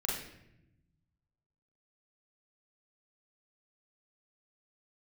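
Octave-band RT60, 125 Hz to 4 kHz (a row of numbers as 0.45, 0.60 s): 1.9, 1.5, 0.95, 0.70, 0.80, 0.60 s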